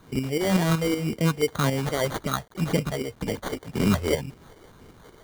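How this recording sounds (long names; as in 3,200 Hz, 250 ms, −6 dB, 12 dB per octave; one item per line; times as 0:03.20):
phaser sweep stages 4, 1.9 Hz, lowest notch 170–1,100 Hz
a quantiser's noise floor 10 bits, dither none
tremolo saw up 5.3 Hz, depth 55%
aliases and images of a low sample rate 2,600 Hz, jitter 0%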